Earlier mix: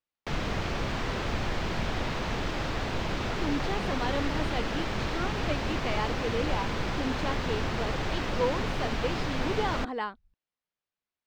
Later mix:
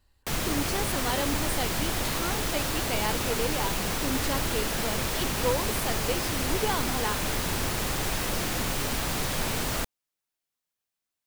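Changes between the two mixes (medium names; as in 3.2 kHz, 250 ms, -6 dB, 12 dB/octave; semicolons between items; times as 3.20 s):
speech: entry -2.95 s; master: remove distance through air 190 m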